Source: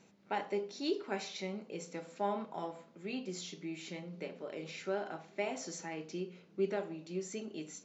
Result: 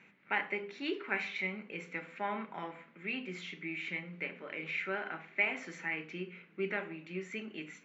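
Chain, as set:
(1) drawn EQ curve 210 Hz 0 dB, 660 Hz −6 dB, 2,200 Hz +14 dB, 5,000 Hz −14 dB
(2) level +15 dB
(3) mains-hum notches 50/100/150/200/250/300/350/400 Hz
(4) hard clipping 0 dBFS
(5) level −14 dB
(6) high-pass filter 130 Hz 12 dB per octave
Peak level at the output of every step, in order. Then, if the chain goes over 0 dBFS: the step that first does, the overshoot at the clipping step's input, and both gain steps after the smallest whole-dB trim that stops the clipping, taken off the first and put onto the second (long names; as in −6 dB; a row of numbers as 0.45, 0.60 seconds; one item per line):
−18.0, −3.0, −3.5, −3.5, −17.5, −17.5 dBFS
no step passes full scale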